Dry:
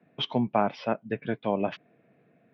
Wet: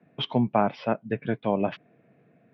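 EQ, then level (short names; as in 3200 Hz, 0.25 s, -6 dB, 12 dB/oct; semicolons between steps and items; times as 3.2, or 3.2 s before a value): air absorption 110 m; bell 120 Hz +3 dB 1.3 oct; +2.0 dB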